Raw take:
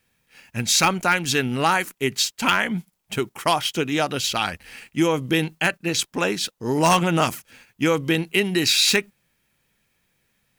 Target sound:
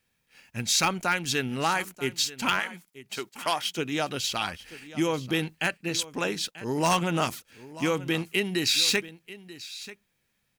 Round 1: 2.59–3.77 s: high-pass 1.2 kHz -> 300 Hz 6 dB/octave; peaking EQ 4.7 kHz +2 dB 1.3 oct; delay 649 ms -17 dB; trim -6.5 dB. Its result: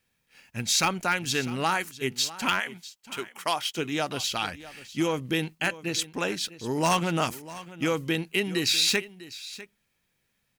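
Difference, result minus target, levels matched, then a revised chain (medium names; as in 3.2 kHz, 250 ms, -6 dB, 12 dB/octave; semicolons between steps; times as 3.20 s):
echo 288 ms early
2.59–3.77 s: high-pass 1.2 kHz -> 300 Hz 6 dB/octave; peaking EQ 4.7 kHz +2 dB 1.3 oct; delay 937 ms -17 dB; trim -6.5 dB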